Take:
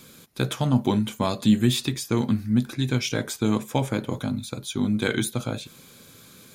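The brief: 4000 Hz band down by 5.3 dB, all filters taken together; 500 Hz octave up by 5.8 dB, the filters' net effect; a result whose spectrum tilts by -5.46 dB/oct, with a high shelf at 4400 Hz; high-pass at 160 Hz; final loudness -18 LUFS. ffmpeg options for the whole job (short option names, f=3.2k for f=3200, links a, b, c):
-af "highpass=160,equalizer=f=500:t=o:g=7.5,equalizer=f=4k:t=o:g=-9,highshelf=f=4.4k:g=4.5,volume=6.5dB"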